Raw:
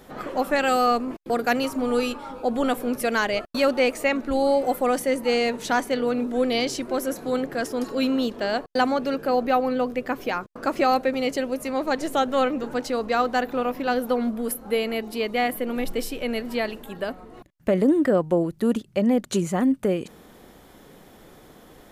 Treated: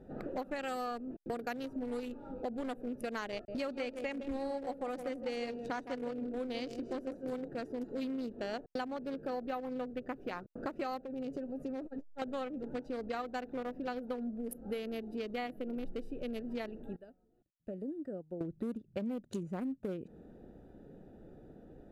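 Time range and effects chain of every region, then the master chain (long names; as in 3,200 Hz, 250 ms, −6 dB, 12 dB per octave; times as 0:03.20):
0:03.32–0:07.48: low-pass filter 9,800 Hz + downward expander −35 dBFS + repeating echo 159 ms, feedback 33%, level −8.5 dB
0:11.05–0:12.22: comb filter 7.3 ms, depth 51% + downward compressor 4 to 1, threshold −23 dBFS + saturating transformer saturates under 370 Hz
0:16.96–0:18.41: first-order pre-emphasis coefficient 0.8 + expander for the loud parts, over −50 dBFS
whole clip: adaptive Wiener filter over 41 samples; downward compressor 5 to 1, threshold −34 dBFS; level −2.5 dB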